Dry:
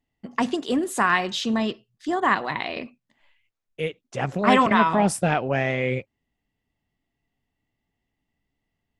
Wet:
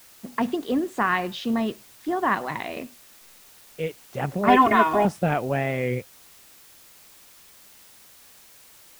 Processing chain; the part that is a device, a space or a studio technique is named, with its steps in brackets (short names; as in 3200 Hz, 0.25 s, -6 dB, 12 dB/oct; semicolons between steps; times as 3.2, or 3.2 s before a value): cassette deck with a dirty head (tape spacing loss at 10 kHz 20 dB; wow and flutter; white noise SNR 24 dB); 4.48–5.05 comb 2.8 ms, depth 91%